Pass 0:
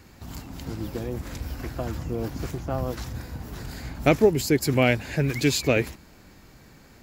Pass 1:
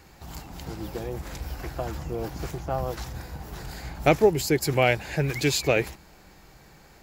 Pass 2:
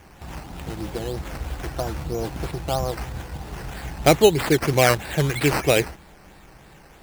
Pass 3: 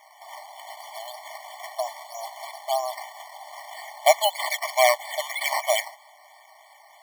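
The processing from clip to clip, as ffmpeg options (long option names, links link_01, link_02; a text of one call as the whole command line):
ffmpeg -i in.wav -af "equalizer=frequency=100:width_type=o:width=0.33:gain=-10,equalizer=frequency=250:width_type=o:width=0.33:gain=-11,equalizer=frequency=800:width_type=o:width=0.33:gain=5" out.wav
ffmpeg -i in.wav -af "acrusher=samples=10:mix=1:aa=0.000001:lfo=1:lforange=6:lforate=3.1,volume=4dB" out.wav
ffmpeg -i in.wav -af "afftfilt=real='re*eq(mod(floor(b*sr/1024/590),2),1)':imag='im*eq(mod(floor(b*sr/1024/590),2),1)':win_size=1024:overlap=0.75,volume=2dB" out.wav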